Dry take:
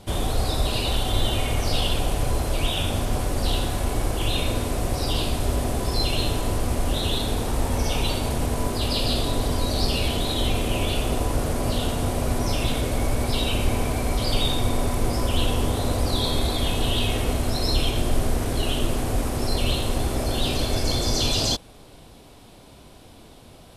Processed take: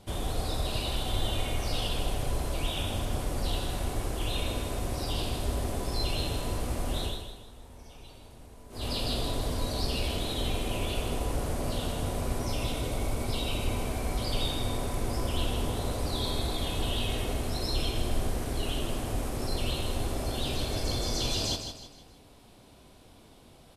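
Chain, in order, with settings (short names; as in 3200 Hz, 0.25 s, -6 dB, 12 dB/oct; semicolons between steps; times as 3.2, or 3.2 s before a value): 7.02–8.88 dip -18.5 dB, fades 0.19 s; 12.44–13.87 notch 1700 Hz, Q 8.8; feedback echo 0.157 s, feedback 38%, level -8 dB; gain -8 dB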